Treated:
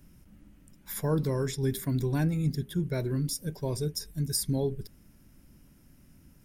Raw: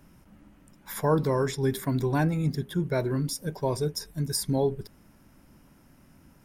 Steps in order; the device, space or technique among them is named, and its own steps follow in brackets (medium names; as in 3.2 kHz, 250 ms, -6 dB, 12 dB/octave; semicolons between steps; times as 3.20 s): smiley-face EQ (bass shelf 97 Hz +6.5 dB; peaking EQ 920 Hz -8.5 dB 1.6 oct; treble shelf 6.9 kHz +4.5 dB); trim -2.5 dB